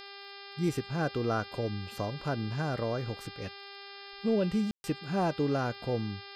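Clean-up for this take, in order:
click removal
hum removal 398.6 Hz, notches 13
ambience match 0:04.71–0:04.84

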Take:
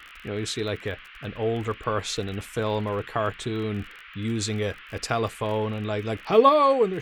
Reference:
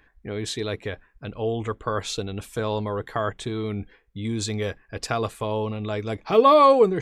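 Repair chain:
click removal
noise reduction from a noise print 10 dB
level 0 dB, from 0:06.49 +4.5 dB

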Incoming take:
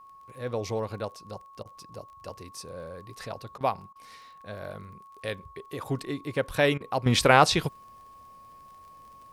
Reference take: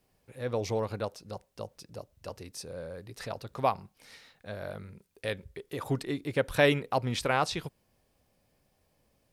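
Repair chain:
click removal
notch filter 1,100 Hz, Q 30
repair the gap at 0:01.63/0:03.58/0:03.93/0:06.78, 24 ms
level 0 dB, from 0:07.06 −9.5 dB

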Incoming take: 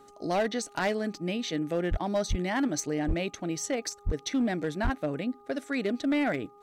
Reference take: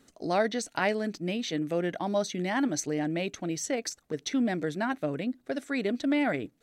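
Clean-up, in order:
clipped peaks rebuilt −21.5 dBFS
hum removal 408.2 Hz, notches 3
high-pass at the plosives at 0:01.90/0:02.29/0:03.07/0:04.05/0:04.83

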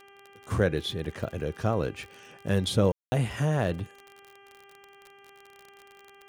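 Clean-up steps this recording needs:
click removal
hum removal 397.3 Hz, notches 8
ambience match 0:02.92–0:03.12

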